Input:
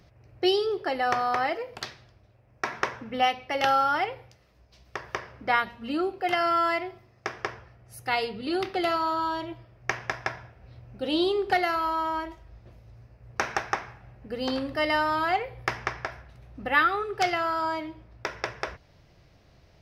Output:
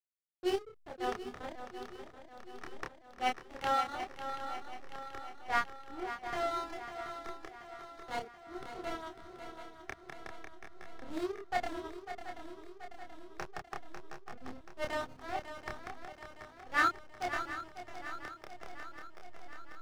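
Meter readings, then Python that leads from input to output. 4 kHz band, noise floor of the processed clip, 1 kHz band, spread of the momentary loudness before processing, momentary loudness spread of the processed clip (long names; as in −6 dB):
−13.5 dB, −57 dBFS, −11.0 dB, 14 LU, 17 LU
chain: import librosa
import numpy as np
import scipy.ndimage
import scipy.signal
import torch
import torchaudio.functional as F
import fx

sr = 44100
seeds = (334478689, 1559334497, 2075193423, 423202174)

y = fx.wiener(x, sr, points=25)
y = fx.dereverb_blind(y, sr, rt60_s=1.2)
y = fx.backlash(y, sr, play_db=-22.5)
y = fx.transient(y, sr, attack_db=-7, sustain_db=0)
y = fx.doubler(y, sr, ms=28.0, db=-2.5)
y = fx.echo_swing(y, sr, ms=731, ratio=3, feedback_pct=61, wet_db=-7.0)
y = fx.upward_expand(y, sr, threshold_db=-38.0, expansion=1.5)
y = y * librosa.db_to_amplitude(-3.0)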